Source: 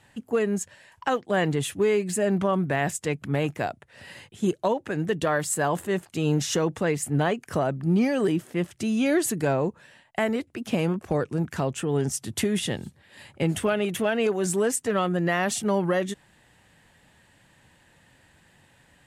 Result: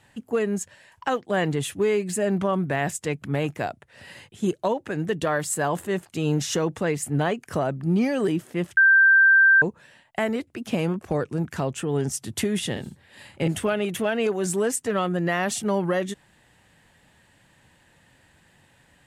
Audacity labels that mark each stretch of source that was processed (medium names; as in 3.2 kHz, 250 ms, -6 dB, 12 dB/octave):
8.770000	9.620000	bleep 1.57 kHz -12 dBFS
12.710000	13.480000	doubling 50 ms -5 dB